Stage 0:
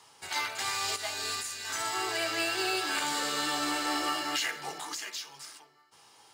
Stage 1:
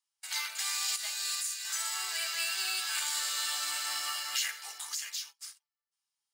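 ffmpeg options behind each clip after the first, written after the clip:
ffmpeg -i in.wav -af "highpass=1300,agate=range=-30dB:threshold=-46dB:ratio=16:detection=peak,highshelf=frequency=4700:gain=11.5,volume=-5dB" out.wav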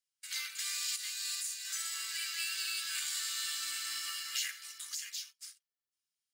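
ffmpeg -i in.wav -af "asuperstop=centerf=680:order=4:qfactor=0.58,volume=-3.5dB" out.wav

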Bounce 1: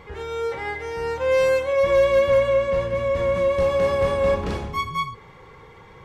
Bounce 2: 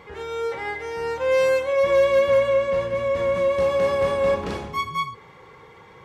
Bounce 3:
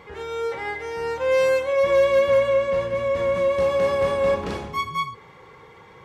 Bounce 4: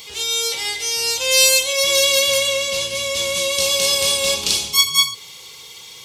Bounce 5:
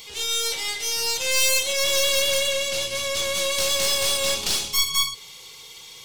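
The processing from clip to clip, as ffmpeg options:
ffmpeg -i in.wav -af "highpass=frequency=160:poles=1" out.wav
ffmpeg -i in.wav -af anull out.wav
ffmpeg -i in.wav -af "highshelf=frequency=2600:gain=9,aexciter=amount=10.8:drive=8.1:freq=2700,volume=-5dB" out.wav
ffmpeg -i in.wav -af "aeval=exprs='(tanh(7.08*val(0)+0.7)-tanh(0.7))/7.08':channel_layout=same" out.wav

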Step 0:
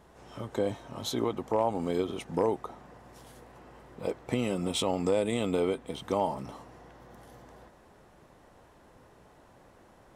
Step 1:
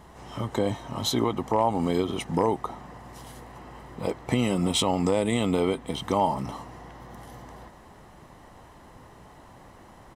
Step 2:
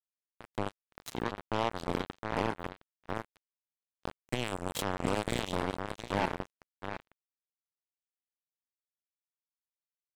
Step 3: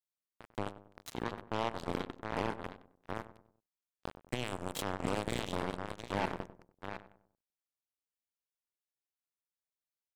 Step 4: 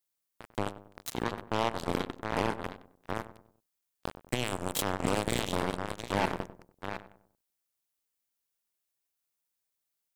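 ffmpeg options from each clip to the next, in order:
ffmpeg -i in.wav -filter_complex "[0:a]aecho=1:1:1:0.33,asplit=2[link_01][link_02];[link_02]alimiter=limit=-22.5dB:level=0:latency=1:release=205,volume=-0.5dB[link_03];[link_01][link_03]amix=inputs=2:normalize=0,volume=1.5dB" out.wav
ffmpeg -i in.wav -filter_complex "[0:a]asplit=2[link_01][link_02];[link_02]adelay=714,lowpass=frequency=2100:poles=1,volume=-3dB,asplit=2[link_03][link_04];[link_04]adelay=714,lowpass=frequency=2100:poles=1,volume=0.36,asplit=2[link_05][link_06];[link_06]adelay=714,lowpass=frequency=2100:poles=1,volume=0.36,asplit=2[link_07][link_08];[link_08]adelay=714,lowpass=frequency=2100:poles=1,volume=0.36,asplit=2[link_09][link_10];[link_10]adelay=714,lowpass=frequency=2100:poles=1,volume=0.36[link_11];[link_01][link_03][link_05][link_07][link_09][link_11]amix=inputs=6:normalize=0,acrusher=bits=2:mix=0:aa=0.5,volume=-8dB" out.wav
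ffmpeg -i in.wav -filter_complex "[0:a]asplit=2[link_01][link_02];[link_02]adelay=96,lowpass=frequency=1200:poles=1,volume=-12.5dB,asplit=2[link_03][link_04];[link_04]adelay=96,lowpass=frequency=1200:poles=1,volume=0.44,asplit=2[link_05][link_06];[link_06]adelay=96,lowpass=frequency=1200:poles=1,volume=0.44,asplit=2[link_07][link_08];[link_08]adelay=96,lowpass=frequency=1200:poles=1,volume=0.44[link_09];[link_01][link_03][link_05][link_07][link_09]amix=inputs=5:normalize=0,volume=-3.5dB" out.wav
ffmpeg -i in.wav -af "highshelf=frequency=7200:gain=8,volume=5dB" out.wav

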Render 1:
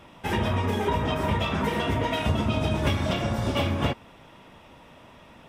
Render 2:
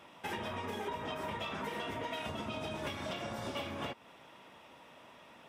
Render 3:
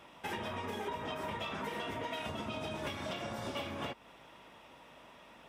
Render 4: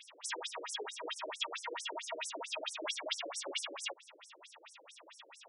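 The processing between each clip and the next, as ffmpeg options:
ffmpeg -i in.wav -af "highpass=frequency=390:poles=1,acompressor=threshold=-34dB:ratio=3,volume=-4dB" out.wav
ffmpeg -i in.wav -af "aeval=exprs='val(0)+0.0002*(sin(2*PI*50*n/s)+sin(2*PI*2*50*n/s)/2+sin(2*PI*3*50*n/s)/3+sin(2*PI*4*50*n/s)/4+sin(2*PI*5*50*n/s)/5)':channel_layout=same" out.wav
ffmpeg -i in.wav -af "crystalizer=i=6.5:c=0,afftfilt=real='re*between(b*sr/1024,390*pow(7800/390,0.5+0.5*sin(2*PI*4.5*pts/sr))/1.41,390*pow(7800/390,0.5+0.5*sin(2*PI*4.5*pts/sr))*1.41)':imag='im*between(b*sr/1024,390*pow(7800/390,0.5+0.5*sin(2*PI*4.5*pts/sr))/1.41,390*pow(7800/390,0.5+0.5*sin(2*PI*4.5*pts/sr))*1.41)':win_size=1024:overlap=0.75,volume=2dB" out.wav

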